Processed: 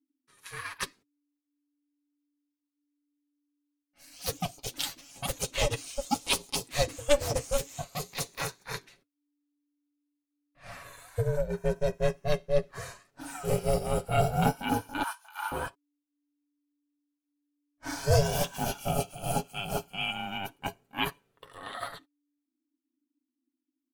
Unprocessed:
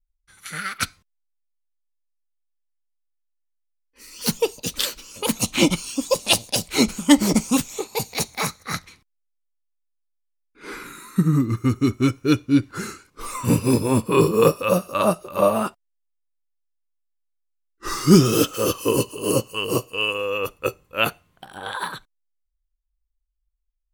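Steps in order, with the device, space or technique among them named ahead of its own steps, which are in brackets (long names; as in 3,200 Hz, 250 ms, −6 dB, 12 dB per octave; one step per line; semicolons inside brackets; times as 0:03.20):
alien voice (ring modulation 290 Hz; flanger 0.19 Hz, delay 0.9 ms, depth 7.9 ms, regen −67%)
0:15.03–0:15.52: inverse Chebyshev high-pass filter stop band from 490 Hz, stop band 40 dB
comb filter 7.2 ms, depth 43%
level −3 dB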